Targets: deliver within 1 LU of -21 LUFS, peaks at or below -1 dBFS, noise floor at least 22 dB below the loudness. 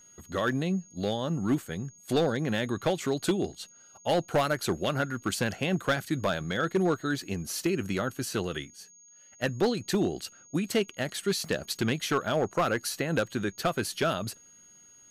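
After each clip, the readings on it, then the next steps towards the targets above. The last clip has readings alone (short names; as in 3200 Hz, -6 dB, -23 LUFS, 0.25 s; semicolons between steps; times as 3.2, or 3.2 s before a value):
clipped 0.7%; flat tops at -19.0 dBFS; steady tone 6600 Hz; tone level -53 dBFS; loudness -29.5 LUFS; peak -19.0 dBFS; loudness target -21.0 LUFS
-> clip repair -19 dBFS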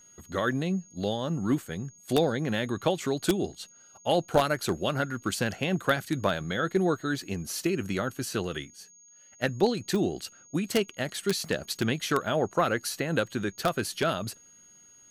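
clipped 0.0%; steady tone 6600 Hz; tone level -53 dBFS
-> notch 6600 Hz, Q 30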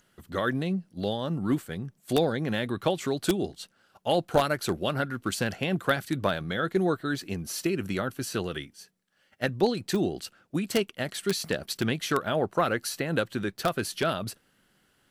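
steady tone none; loudness -29.0 LUFS; peak -10.0 dBFS; loudness target -21.0 LUFS
-> gain +8 dB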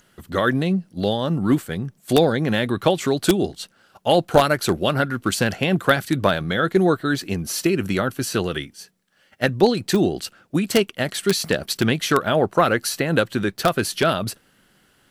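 loudness -21.0 LUFS; peak -2.0 dBFS; noise floor -60 dBFS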